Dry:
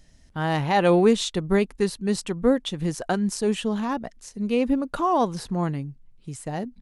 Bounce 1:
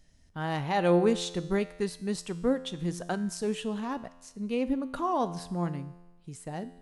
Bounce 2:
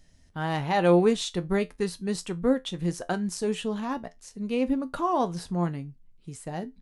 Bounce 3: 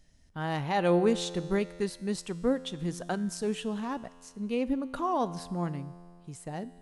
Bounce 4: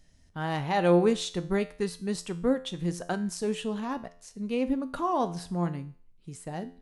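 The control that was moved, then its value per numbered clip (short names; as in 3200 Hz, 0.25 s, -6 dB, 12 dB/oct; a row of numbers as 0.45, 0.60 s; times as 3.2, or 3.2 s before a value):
resonator, decay: 1.1, 0.18, 2.2, 0.5 s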